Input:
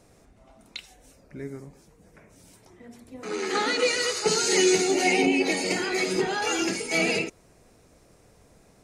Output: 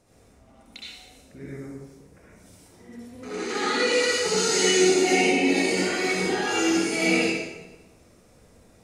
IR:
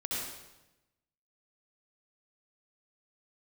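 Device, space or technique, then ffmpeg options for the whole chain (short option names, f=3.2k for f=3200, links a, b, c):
bathroom: -filter_complex "[1:a]atrim=start_sample=2205[a];[0:a][a]afir=irnorm=-1:irlink=0,volume=-3dB"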